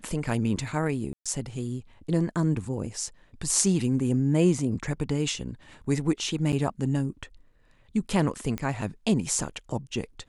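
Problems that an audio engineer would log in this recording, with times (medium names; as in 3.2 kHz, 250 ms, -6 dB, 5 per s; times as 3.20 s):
1.13–1.26 s: dropout 126 ms
6.52–6.53 s: dropout 8.4 ms
8.58 s: pop -18 dBFS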